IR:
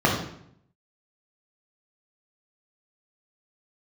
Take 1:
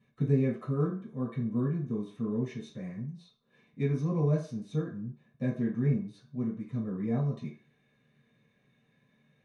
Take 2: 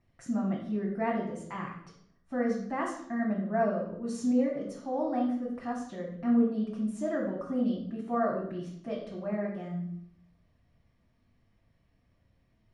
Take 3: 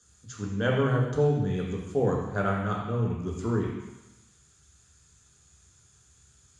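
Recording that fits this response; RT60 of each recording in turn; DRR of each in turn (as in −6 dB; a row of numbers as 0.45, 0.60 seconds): 2; 0.40, 0.70, 1.1 seconds; −7.0, −3.0, −2.0 decibels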